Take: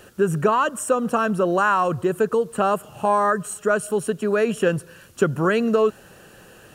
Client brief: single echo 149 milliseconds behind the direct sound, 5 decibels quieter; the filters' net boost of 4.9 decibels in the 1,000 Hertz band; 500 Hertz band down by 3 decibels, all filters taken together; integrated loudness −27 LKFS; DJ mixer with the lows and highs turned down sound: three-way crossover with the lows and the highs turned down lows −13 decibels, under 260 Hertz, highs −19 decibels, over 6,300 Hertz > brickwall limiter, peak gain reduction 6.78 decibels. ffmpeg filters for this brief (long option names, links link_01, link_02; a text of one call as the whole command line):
ffmpeg -i in.wav -filter_complex "[0:a]acrossover=split=260 6300:gain=0.224 1 0.112[link_01][link_02][link_03];[link_01][link_02][link_03]amix=inputs=3:normalize=0,equalizer=frequency=500:width_type=o:gain=-4.5,equalizer=frequency=1000:width_type=o:gain=7,aecho=1:1:149:0.562,volume=-6dB,alimiter=limit=-15.5dB:level=0:latency=1" out.wav